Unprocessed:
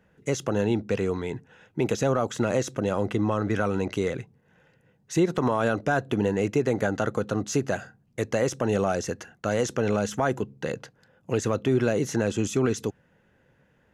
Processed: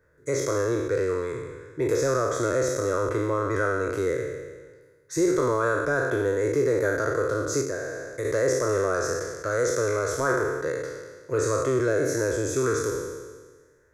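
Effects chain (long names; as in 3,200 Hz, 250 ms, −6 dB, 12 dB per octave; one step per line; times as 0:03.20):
peak hold with a decay on every bin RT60 1.46 s
0:07.61–0:08.25: downward compressor 2.5 to 1, threshold −26 dBFS, peak gain reduction 6.5 dB
phaser with its sweep stopped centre 780 Hz, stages 6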